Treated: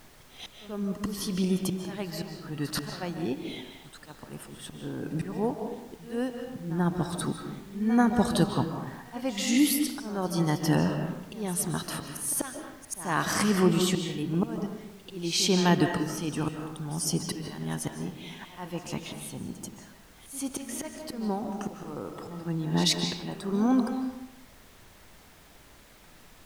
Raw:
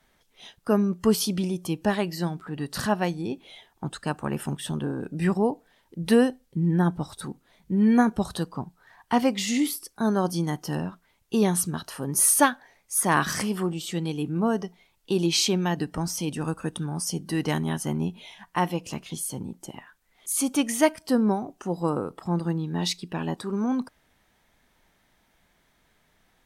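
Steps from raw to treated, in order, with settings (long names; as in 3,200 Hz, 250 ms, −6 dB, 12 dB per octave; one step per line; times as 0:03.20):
volume swells 747 ms
echo ahead of the sound 87 ms −14.5 dB
on a send at −5 dB: convolution reverb RT60 0.90 s, pre-delay 110 ms
on the sum: background noise pink −60 dBFS
level +5 dB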